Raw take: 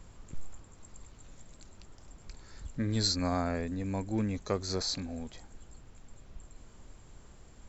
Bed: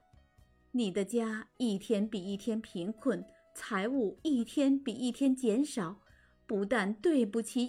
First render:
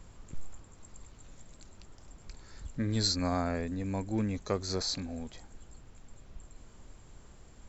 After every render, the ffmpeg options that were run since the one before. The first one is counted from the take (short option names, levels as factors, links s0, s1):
-af anull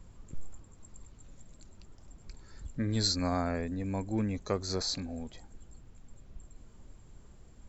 -af "afftdn=nr=6:nf=-55"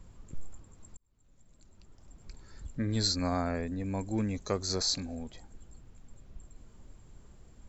-filter_complex "[0:a]asettb=1/sr,asplit=3[s0][s1][s2];[s0]atrim=end=3.994[s3];[s1]atrim=start=3.99:end=5.15,asetpts=PTS-STARTPTS,afade=t=in:d=0.004:c=qsin,afade=t=out:st=1.156:d=0.004:c=qsin,equalizer=f=6500:t=o:w=1.4:g=5.5[s4];[s2]atrim=start=5.146[s5];[s3][s4]acrossfade=d=0.004:c1=hsin:c2=qsin[s6];[s6][s5]acrossfade=d=0.004:c1=qsin:c2=hsin,asplit=2[s7][s8];[s7]atrim=end=0.97,asetpts=PTS-STARTPTS,afade=t=out:st=0.966:d=0.004:c=hsin[s9];[s8]atrim=start=0.97,asetpts=PTS-STARTPTS,afade=t=in:d=1.35[s10];[s9][s10]concat=n=2:v=0:a=1"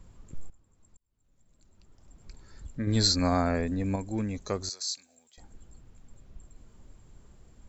-filter_complex "[0:a]asettb=1/sr,asplit=3[s0][s1][s2];[s0]atrim=end=2.874[s3];[s1]atrim=start=2.87:end=3.96,asetpts=PTS-STARTPTS,afade=t=in:d=0.004:c=qsin,afade=t=out:st=1.086:d=0.004:c=qsin,acontrast=33[s4];[s2]atrim=start=3.956[s5];[s3][s4]acrossfade=d=0.004:c1=hsin:c2=qsin[s6];[s6][s5]acrossfade=d=0.004:c1=qsin:c2=hsin,asettb=1/sr,asplit=3[s7][s8][s9];[s7]atrim=end=4.694[s10];[s8]atrim=start=4.69:end=5.38,asetpts=PTS-STARTPTS,afade=t=in:d=0.004:c=qsin,afade=t=out:st=0.686:d=0.004:c=qsin,aderivative[s11];[s9]atrim=start=5.376[s12];[s10][s11]acrossfade=d=0.004:c1=hsin:c2=qsin[s13];[s13][s12]acrossfade=d=0.004:c1=qsin:c2=hsin,asplit=2[s14][s15];[s14]atrim=end=0.5,asetpts=PTS-STARTPTS,afade=t=out:st=0.496:d=0.004:c=hsin:silence=0.177828[s16];[s15]atrim=start=0.5,asetpts=PTS-STARTPTS,afade=t=in:d=1.81:silence=0.177828[s17];[s16][s17]concat=n=2:v=0:a=1"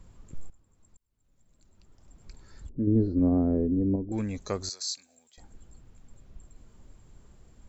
-filter_complex "[0:a]asettb=1/sr,asplit=3[s0][s1][s2];[s0]atrim=end=2.694[s3];[s1]atrim=start=2.69:end=4.12,asetpts=PTS-STARTPTS,afade=t=in:d=0.004:c=qsin,afade=t=out:st=1.426:d=0.004:c=qsin,lowpass=f=360:t=q:w=2.8[s4];[s2]atrim=start=4.116[s5];[s3][s4]acrossfade=d=0.004:c1=hsin:c2=qsin[s6];[s6][s5]acrossfade=d=0.004:c1=qsin:c2=hsin"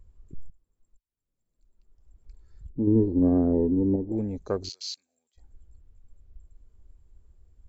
-af "afwtdn=0.0126,equalizer=f=400:t=o:w=0.95:g=5.5"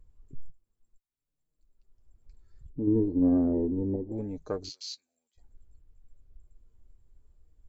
-af "flanger=delay=6.5:depth=2.3:regen=43:speed=0.67:shape=sinusoidal"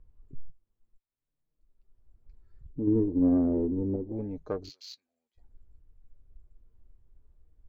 -af "adynamicsmooth=sensitivity=3.5:basefreq=3200"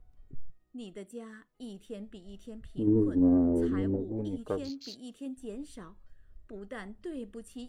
-filter_complex "[1:a]volume=0.266[s0];[0:a][s0]amix=inputs=2:normalize=0"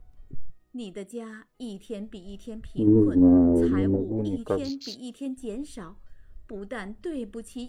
-af "volume=2.11"